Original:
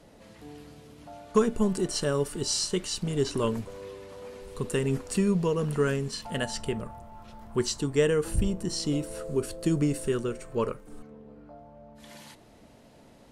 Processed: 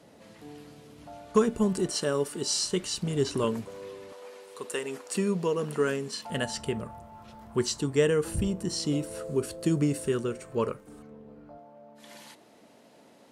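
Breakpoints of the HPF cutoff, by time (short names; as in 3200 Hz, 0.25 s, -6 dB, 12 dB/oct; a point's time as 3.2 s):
110 Hz
from 0.96 s 47 Hz
from 1.9 s 180 Hz
from 2.66 s 54 Hz
from 3.44 s 130 Hz
from 4.13 s 490 Hz
from 5.15 s 220 Hz
from 6.3 s 69 Hz
from 11.58 s 230 Hz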